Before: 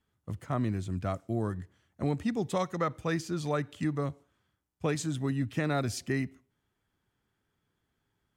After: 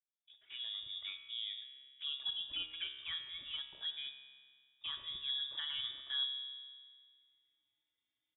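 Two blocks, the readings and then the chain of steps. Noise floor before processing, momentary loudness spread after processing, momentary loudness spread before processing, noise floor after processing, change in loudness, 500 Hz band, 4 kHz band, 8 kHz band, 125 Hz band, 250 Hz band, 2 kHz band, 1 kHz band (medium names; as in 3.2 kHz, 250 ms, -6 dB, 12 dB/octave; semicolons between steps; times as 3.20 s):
-81 dBFS, 12 LU, 7 LU, under -85 dBFS, -7.0 dB, under -35 dB, +11.5 dB, under -35 dB, under -35 dB, under -40 dB, -9.5 dB, -23.5 dB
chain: fade-in on the opening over 0.84 s; comb 3.7 ms, depth 38%; touch-sensitive flanger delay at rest 5.2 ms, full sweep at -24.5 dBFS; feedback comb 67 Hz, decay 1.8 s, harmonics all, mix 80%; frequency inversion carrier 3.6 kHz; trim +2 dB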